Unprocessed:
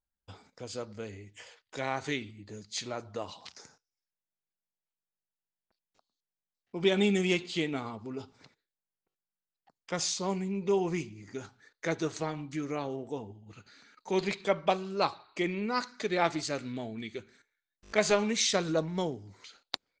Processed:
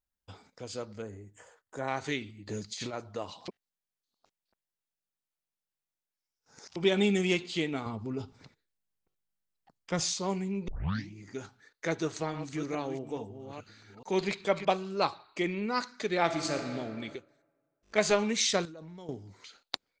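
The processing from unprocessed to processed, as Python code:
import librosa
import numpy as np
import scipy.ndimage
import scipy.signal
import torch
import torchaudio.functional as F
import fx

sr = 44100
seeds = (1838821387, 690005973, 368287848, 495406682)

y = fx.band_shelf(x, sr, hz=3400.0, db=-15.0, octaves=1.7, at=(1.02, 1.88))
y = fx.over_compress(y, sr, threshold_db=-42.0, ratio=-1.0, at=(2.46, 2.92), fade=0.02)
y = fx.low_shelf(y, sr, hz=180.0, db=11.5, at=(7.86, 10.13))
y = fx.reverse_delay(y, sr, ms=426, wet_db=-9.0, at=(11.9, 14.65))
y = fx.reverb_throw(y, sr, start_s=16.24, length_s=0.4, rt60_s=2.4, drr_db=3.5)
y = fx.upward_expand(y, sr, threshold_db=-58.0, expansion=1.5, at=(17.16, 17.98))
y = fx.level_steps(y, sr, step_db=23, at=(18.65, 19.09))
y = fx.edit(y, sr, fx.reverse_span(start_s=3.48, length_s=3.28),
    fx.tape_start(start_s=10.68, length_s=0.43), tone=tone)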